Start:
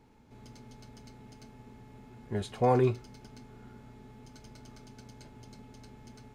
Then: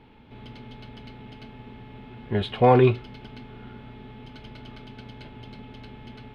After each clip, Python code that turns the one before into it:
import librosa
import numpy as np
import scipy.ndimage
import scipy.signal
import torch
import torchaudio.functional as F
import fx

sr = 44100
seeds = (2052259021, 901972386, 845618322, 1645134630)

y = fx.high_shelf_res(x, sr, hz=4700.0, db=-14.0, q=3.0)
y = F.gain(torch.from_numpy(y), 8.0).numpy()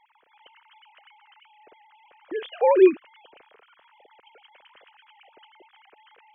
y = fx.sine_speech(x, sr)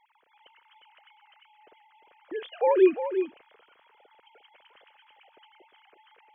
y = x + 10.0 ** (-9.0 / 20.0) * np.pad(x, (int(352 * sr / 1000.0), 0))[:len(x)]
y = F.gain(torch.from_numpy(y), -4.0).numpy()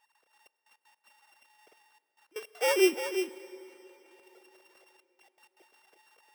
y = np.r_[np.sort(x[:len(x) // 16 * 16].reshape(-1, 16), axis=1).ravel(), x[len(x) // 16 * 16:]]
y = fx.step_gate(y, sr, bpm=159, pattern='xxxxx..x.x.xxxxx', floor_db=-24.0, edge_ms=4.5)
y = fx.rev_plate(y, sr, seeds[0], rt60_s=4.0, hf_ratio=0.85, predelay_ms=0, drr_db=16.0)
y = F.gain(torch.from_numpy(y), -4.5).numpy()